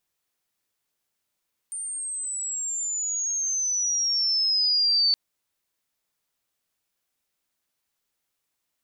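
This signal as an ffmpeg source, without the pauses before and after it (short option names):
-f lavfi -i "aevalsrc='pow(10,(-30+12.5*t/3.42)/20)*sin(2*PI*9000*3.42/log(4500/9000)*(exp(log(4500/9000)*t/3.42)-1))':d=3.42:s=44100"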